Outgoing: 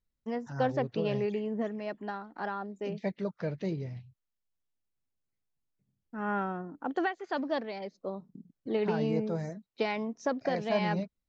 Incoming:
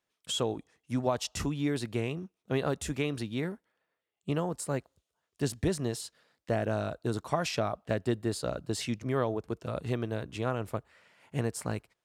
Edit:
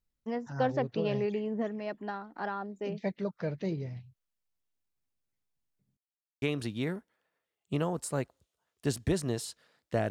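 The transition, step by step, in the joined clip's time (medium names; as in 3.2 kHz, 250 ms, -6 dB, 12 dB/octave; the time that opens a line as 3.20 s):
outgoing
5.97–6.42 s: mute
6.42 s: go over to incoming from 2.98 s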